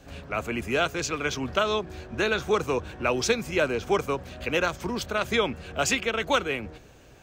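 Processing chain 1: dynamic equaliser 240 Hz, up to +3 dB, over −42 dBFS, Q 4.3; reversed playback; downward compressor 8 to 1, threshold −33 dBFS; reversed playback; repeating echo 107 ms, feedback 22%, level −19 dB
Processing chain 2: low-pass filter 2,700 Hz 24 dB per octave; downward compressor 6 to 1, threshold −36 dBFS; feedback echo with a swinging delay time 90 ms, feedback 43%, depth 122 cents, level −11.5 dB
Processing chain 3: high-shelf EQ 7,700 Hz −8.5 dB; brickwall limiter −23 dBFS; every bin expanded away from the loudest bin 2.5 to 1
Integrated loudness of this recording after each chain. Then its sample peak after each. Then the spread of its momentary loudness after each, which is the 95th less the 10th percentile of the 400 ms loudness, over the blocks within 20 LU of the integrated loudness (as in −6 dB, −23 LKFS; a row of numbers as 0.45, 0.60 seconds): −37.0, −39.5, −42.0 LKFS; −22.5, −23.0, −23.0 dBFS; 3, 3, 12 LU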